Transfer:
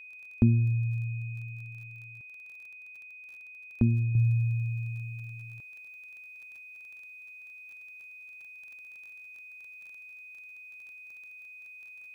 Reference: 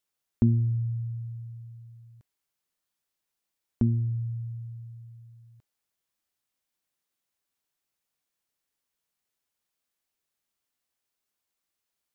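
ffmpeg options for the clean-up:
-af "adeclick=t=4,bandreject=f=2500:w=30,asetnsamples=n=441:p=0,asendcmd='4.15 volume volume -8dB',volume=1"

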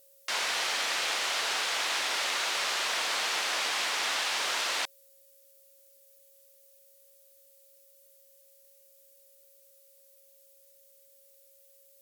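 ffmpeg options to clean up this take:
-af "bandreject=f=550:w=30,afftdn=nr=20:nf=-60"

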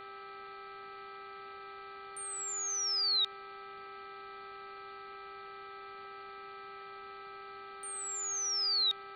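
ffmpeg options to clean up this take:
-af "bandreject=f=395.6:t=h:w=4,bandreject=f=791.2:t=h:w=4,bandreject=f=1186.8:t=h:w=4,bandreject=f=1582.4:t=h:w=4,bandreject=f=1978:t=h:w=4,bandreject=f=2373.6:t=h:w=4,bandreject=f=1300:w=30,afwtdn=0.0022"

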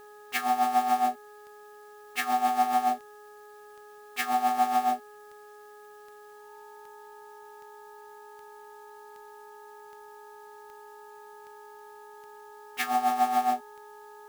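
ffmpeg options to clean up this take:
-af "adeclick=t=4,bandreject=f=418.1:t=h:w=4,bandreject=f=836.2:t=h:w=4,bandreject=f=1254.3:t=h:w=4,bandreject=f=1672.4:t=h:w=4,bandreject=f=890:w=30,agate=range=0.0891:threshold=0.00794"

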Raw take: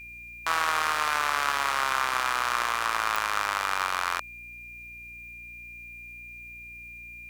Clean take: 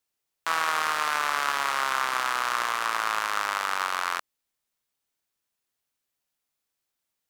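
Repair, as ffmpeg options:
-af "adeclick=t=4,bandreject=f=59.4:t=h:w=4,bandreject=f=118.8:t=h:w=4,bandreject=f=178.2:t=h:w=4,bandreject=f=237.6:t=h:w=4,bandreject=f=297:t=h:w=4,bandreject=f=356.4:t=h:w=4,bandreject=f=2400:w=30,agate=range=0.0891:threshold=0.0158"

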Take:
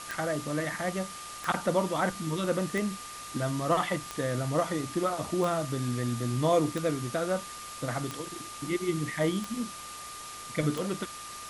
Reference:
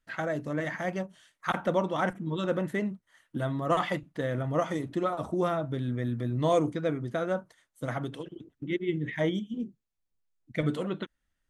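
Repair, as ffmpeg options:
-af "adeclick=t=4,bandreject=f=54.8:t=h:w=4,bandreject=f=109.6:t=h:w=4,bandreject=f=164.4:t=h:w=4,bandreject=f=1200:w=30,afwtdn=0.0079"

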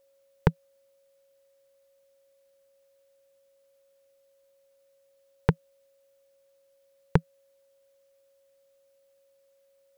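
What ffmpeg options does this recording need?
-af "bandreject=f=550:w=30"

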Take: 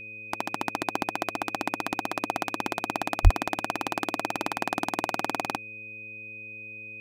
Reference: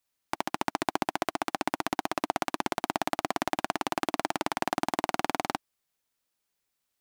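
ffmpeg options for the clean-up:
-filter_complex "[0:a]bandreject=f=108.2:t=h:w=4,bandreject=f=216.4:t=h:w=4,bandreject=f=324.6:t=h:w=4,bandreject=f=432.8:t=h:w=4,bandreject=f=541:t=h:w=4,bandreject=f=2500:w=30,asplit=3[s0][s1][s2];[s0]afade=t=out:st=3.23:d=0.02[s3];[s1]highpass=f=140:w=0.5412,highpass=f=140:w=1.3066,afade=t=in:st=3.23:d=0.02,afade=t=out:st=3.35:d=0.02[s4];[s2]afade=t=in:st=3.35:d=0.02[s5];[s3][s4][s5]amix=inputs=3:normalize=0"

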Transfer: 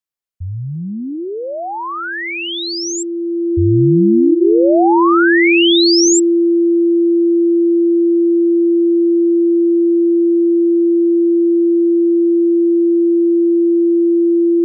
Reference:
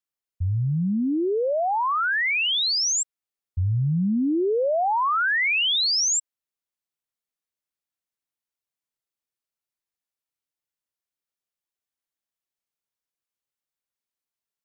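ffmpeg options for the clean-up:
-af "bandreject=f=340:w=30,asetnsamples=n=441:p=0,asendcmd='3.44 volume volume -7.5dB',volume=1"

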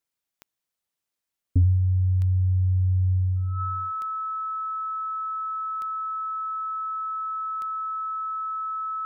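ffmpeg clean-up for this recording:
-af "adeclick=t=4,bandreject=f=1300:w=30"

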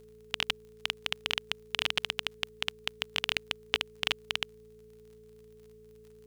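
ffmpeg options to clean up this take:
-af "adeclick=t=4,bandreject=f=56.4:t=h:w=4,bandreject=f=112.8:t=h:w=4,bandreject=f=169.2:t=h:w=4,bandreject=f=225.6:t=h:w=4,bandreject=f=430:w=30"

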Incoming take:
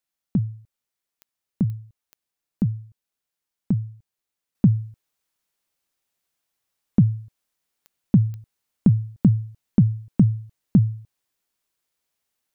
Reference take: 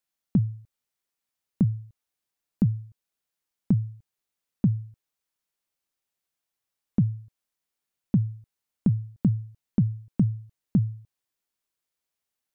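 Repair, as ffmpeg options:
-af "adeclick=t=4,asetnsamples=n=441:p=0,asendcmd='4.55 volume volume -6dB',volume=1"

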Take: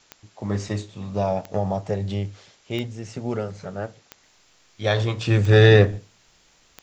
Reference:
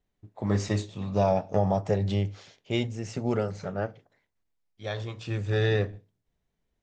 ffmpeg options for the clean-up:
-af "adeclick=t=4,agate=range=0.0891:threshold=0.00282,asetnsamples=n=441:p=0,asendcmd='4.23 volume volume -12dB',volume=1"

